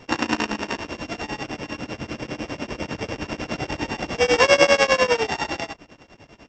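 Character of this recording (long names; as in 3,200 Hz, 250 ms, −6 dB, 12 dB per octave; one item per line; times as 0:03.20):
a buzz of ramps at a fixed pitch in blocks of 16 samples
tremolo triangle 10 Hz, depth 100%
Ogg Vorbis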